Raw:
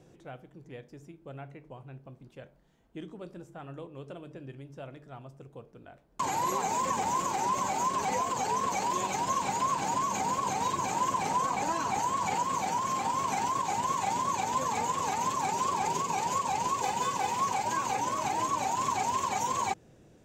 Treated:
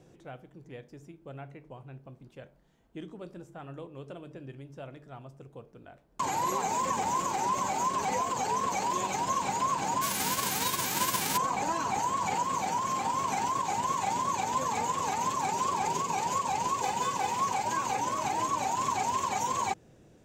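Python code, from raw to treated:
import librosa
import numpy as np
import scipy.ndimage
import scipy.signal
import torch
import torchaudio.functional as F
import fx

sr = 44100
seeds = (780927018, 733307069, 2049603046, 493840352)

y = fx.envelope_flatten(x, sr, power=0.3, at=(10.01, 11.36), fade=0.02)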